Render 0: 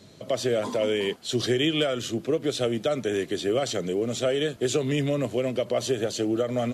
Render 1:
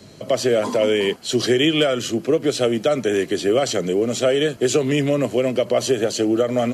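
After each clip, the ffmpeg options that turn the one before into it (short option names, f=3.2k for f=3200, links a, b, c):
-filter_complex "[0:a]bandreject=f=3.6k:w=8.6,acrossover=split=130|4600[a][b][c];[a]acompressor=threshold=-50dB:ratio=6[d];[d][b][c]amix=inputs=3:normalize=0,volume=7dB"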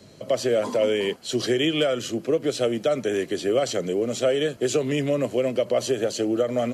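-af "equalizer=f=540:w=3.9:g=3.5,volume=-5.5dB"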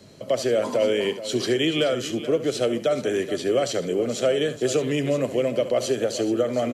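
-af "aecho=1:1:71|428:0.211|0.211"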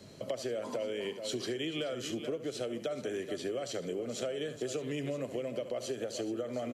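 -af "acompressor=threshold=-30dB:ratio=6,volume=-3.5dB"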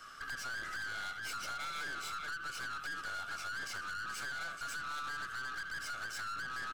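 -af "afftfilt=real='real(if(lt(b,960),b+48*(1-2*mod(floor(b/48),2)),b),0)':imag='imag(if(lt(b,960),b+48*(1-2*mod(floor(b/48),2)),b),0)':win_size=2048:overlap=0.75,aeval=exprs='(tanh(112*val(0)+0.4)-tanh(0.4))/112':c=same,volume=2.5dB"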